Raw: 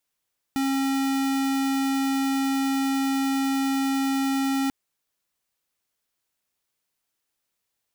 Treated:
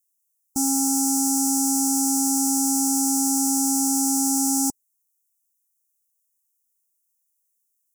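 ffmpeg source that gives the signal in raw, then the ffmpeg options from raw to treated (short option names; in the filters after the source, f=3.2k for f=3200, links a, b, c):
-f lavfi -i "aevalsrc='0.0631*(2*lt(mod(271*t,1),0.5)-1)':d=4.14:s=44100"
-af "afftdn=nr=18:nf=-37,aexciter=amount=10.1:drive=7.6:freq=5k,asuperstop=centerf=2500:order=8:qfactor=0.55"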